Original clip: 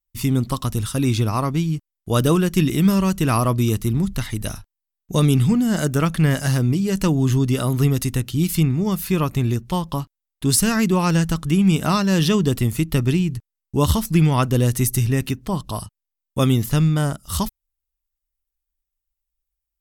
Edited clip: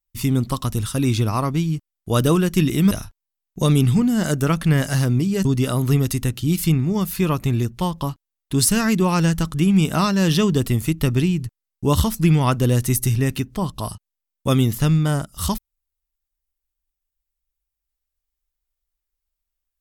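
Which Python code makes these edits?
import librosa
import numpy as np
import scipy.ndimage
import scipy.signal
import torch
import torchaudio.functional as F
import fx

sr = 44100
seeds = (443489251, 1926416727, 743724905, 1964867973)

y = fx.edit(x, sr, fx.cut(start_s=2.91, length_s=1.53),
    fx.cut(start_s=6.98, length_s=0.38), tone=tone)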